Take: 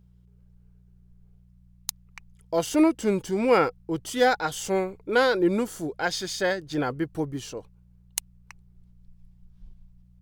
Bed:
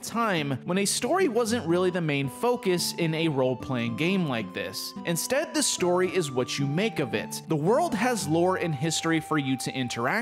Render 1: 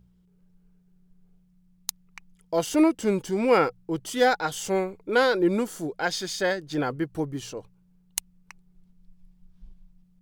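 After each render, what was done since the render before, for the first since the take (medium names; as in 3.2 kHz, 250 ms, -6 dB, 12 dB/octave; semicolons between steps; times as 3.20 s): de-hum 60 Hz, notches 2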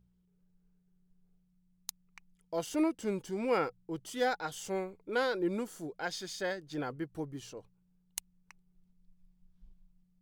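trim -10 dB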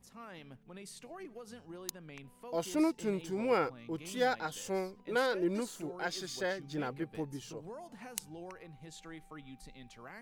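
add bed -24 dB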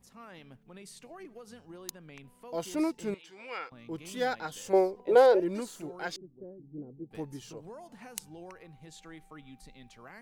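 3.14–3.72 s: band-pass filter 2.7 kHz, Q 1; 4.73–5.40 s: high-order bell 560 Hz +13 dB; 6.16–7.11 s: four-pole ladder low-pass 450 Hz, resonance 25%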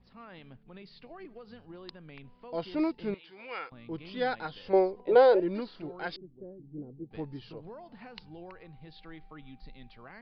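steep low-pass 4.9 kHz 96 dB/octave; bass shelf 75 Hz +9 dB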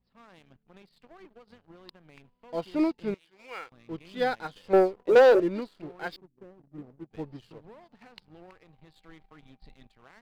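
waveshaping leveller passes 2; upward expansion 1.5:1, over -33 dBFS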